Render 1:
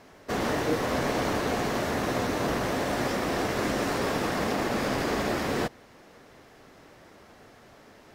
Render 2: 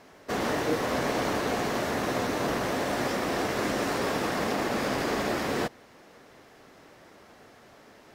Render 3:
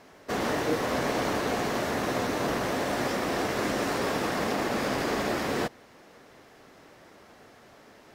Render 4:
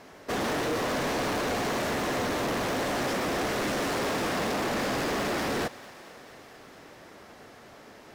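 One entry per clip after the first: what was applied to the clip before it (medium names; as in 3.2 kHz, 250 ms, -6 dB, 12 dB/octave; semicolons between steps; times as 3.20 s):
bass shelf 110 Hz -7 dB
no audible change
hard clipper -30 dBFS, distortion -8 dB; thinning echo 223 ms, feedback 76%, high-pass 420 Hz, level -19 dB; trim +3.5 dB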